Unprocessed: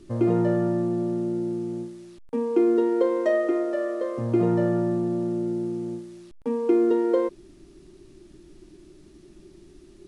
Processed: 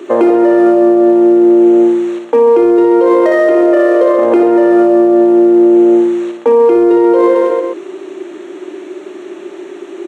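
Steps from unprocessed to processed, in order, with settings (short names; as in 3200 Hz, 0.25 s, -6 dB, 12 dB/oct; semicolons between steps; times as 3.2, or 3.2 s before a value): Wiener smoothing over 9 samples; HPF 390 Hz 24 dB/oct; negative-ratio compressor -24 dBFS; on a send: reverse bouncing-ball echo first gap 60 ms, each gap 1.2×, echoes 5; on the sum: maximiser +28.5 dB; gain -1 dB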